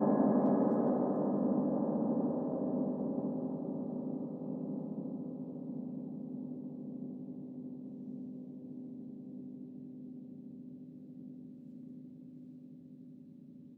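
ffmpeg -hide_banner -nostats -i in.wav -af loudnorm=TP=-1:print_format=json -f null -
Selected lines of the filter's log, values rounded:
"input_i" : "-36.8",
"input_tp" : "-18.7",
"input_lra" : "17.0",
"input_thresh" : "-48.8",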